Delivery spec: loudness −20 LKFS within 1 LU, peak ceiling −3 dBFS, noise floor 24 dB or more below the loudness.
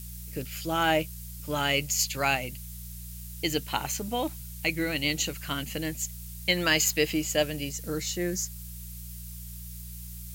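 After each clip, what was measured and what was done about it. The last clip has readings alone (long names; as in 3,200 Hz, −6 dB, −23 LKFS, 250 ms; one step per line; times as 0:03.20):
mains hum 60 Hz; hum harmonics up to 180 Hz; level of the hum −40 dBFS; background noise floor −41 dBFS; target noise floor −53 dBFS; integrated loudness −28.5 LKFS; sample peak −10.0 dBFS; target loudness −20.0 LKFS
→ hum removal 60 Hz, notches 3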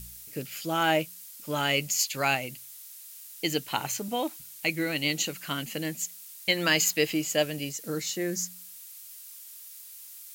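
mains hum none found; background noise floor −47 dBFS; target noise floor −53 dBFS
→ broadband denoise 6 dB, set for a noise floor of −47 dBFS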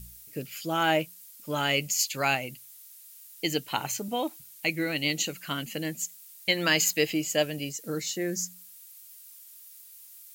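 background noise floor −50 dBFS; target noise floor −53 dBFS
→ broadband denoise 6 dB, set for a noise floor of −50 dBFS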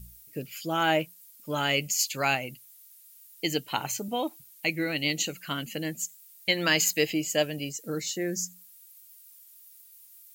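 background noise floor −54 dBFS; integrated loudness −28.5 LKFS; sample peak −10.5 dBFS; target loudness −20.0 LKFS
→ level +8.5 dB
brickwall limiter −3 dBFS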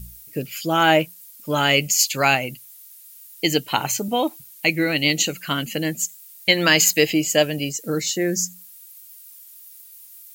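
integrated loudness −20.0 LKFS; sample peak −3.0 dBFS; background noise floor −45 dBFS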